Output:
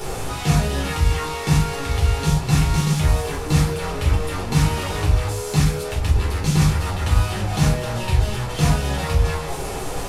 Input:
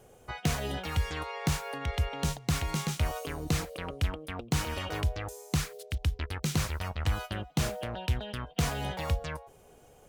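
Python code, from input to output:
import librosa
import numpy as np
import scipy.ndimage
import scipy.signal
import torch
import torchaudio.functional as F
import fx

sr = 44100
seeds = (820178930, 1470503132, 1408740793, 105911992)

y = fx.delta_mod(x, sr, bps=64000, step_db=-31.5)
y = fx.room_shoebox(y, sr, seeds[0], volume_m3=190.0, walls='furnished', distance_m=4.3)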